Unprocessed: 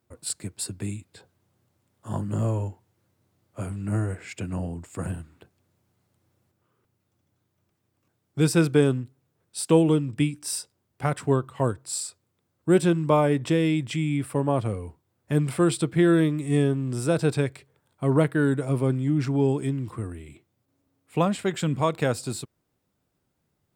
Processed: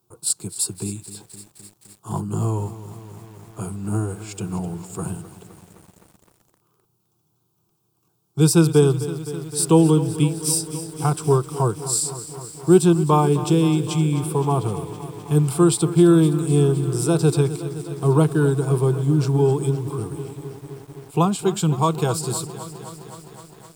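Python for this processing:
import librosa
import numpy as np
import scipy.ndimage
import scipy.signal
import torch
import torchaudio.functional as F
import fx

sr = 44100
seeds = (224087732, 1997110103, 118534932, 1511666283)

y = fx.high_shelf(x, sr, hz=7600.0, db=5.5)
y = fx.fixed_phaser(y, sr, hz=380.0, stages=8)
y = fx.echo_crushed(y, sr, ms=258, feedback_pct=80, bits=8, wet_db=-14.0)
y = y * librosa.db_to_amplitude(6.5)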